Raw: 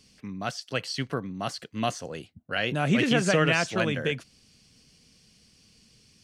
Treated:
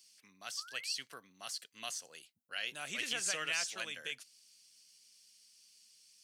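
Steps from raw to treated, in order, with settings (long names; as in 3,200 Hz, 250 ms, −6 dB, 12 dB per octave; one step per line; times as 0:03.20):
sound drawn into the spectrogram rise, 0:00.57–0:00.94, 1,100–2,900 Hz −40 dBFS
first difference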